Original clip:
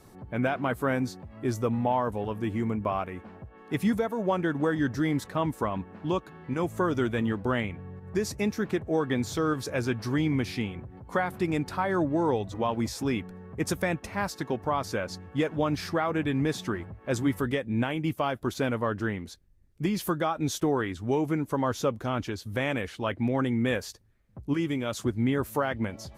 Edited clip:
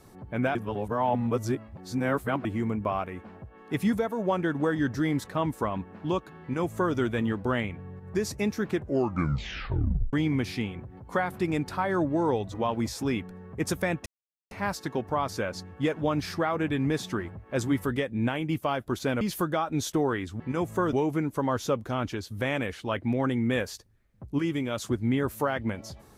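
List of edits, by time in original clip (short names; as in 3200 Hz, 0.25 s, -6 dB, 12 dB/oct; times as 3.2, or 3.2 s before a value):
0.55–2.45 reverse
6.42–6.95 copy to 21.08
8.74 tape stop 1.39 s
14.06 insert silence 0.45 s
18.76–19.89 cut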